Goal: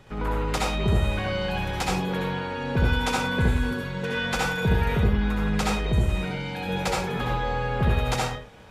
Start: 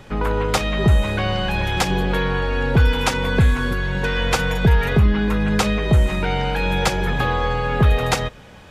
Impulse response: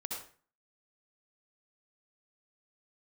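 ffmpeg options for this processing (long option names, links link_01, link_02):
-filter_complex "[0:a]asettb=1/sr,asplit=3[link_01][link_02][link_03];[link_01]atrim=end=5.794[link_04];[link_02]atrim=start=5.79:end=6.69,asetpts=PTS-STARTPTS,afade=type=in:duration=0.004:curve=qsin,afade=type=out:start_time=0.896:duration=0.004:curve=qsin,acrossover=split=450|3000[link_05][link_06][link_07];[link_06]acompressor=threshold=-28dB:ratio=6[link_08];[link_05][link_08][link_07]amix=inputs=3:normalize=0[link_09];[link_03]atrim=start=6.686[link_10];[link_04][link_09]acrossfade=duration=0.004:curve1=hsin:curve2=qsin[link_11];[link_11][link_10]acrossfade=duration=0.004:curve1=qsin:curve2=hsin[link_12];[1:a]atrim=start_sample=2205,afade=type=out:start_time=0.25:duration=0.01,atrim=end_sample=11466[link_13];[link_12][link_13]afir=irnorm=-1:irlink=0,volume=-5.5dB"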